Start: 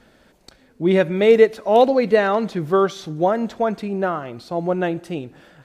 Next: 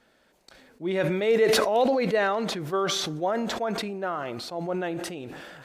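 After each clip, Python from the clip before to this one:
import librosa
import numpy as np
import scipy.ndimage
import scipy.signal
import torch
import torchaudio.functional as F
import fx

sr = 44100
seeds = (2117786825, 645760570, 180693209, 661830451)

y = fx.low_shelf(x, sr, hz=260.0, db=-10.5)
y = fx.sustainer(y, sr, db_per_s=25.0)
y = y * librosa.db_to_amplitude(-7.5)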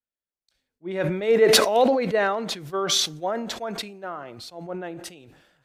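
y = fx.band_widen(x, sr, depth_pct=100)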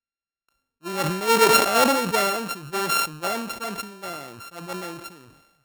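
y = np.r_[np.sort(x[:len(x) // 32 * 32].reshape(-1, 32), axis=1).ravel(), x[len(x) // 32 * 32:]]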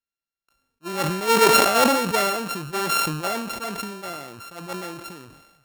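y = fx.sustainer(x, sr, db_per_s=48.0)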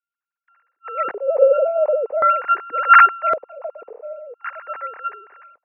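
y = fx.sine_speech(x, sr)
y = fx.filter_lfo_lowpass(y, sr, shape='square', hz=0.45, low_hz=510.0, high_hz=1600.0, q=3.3)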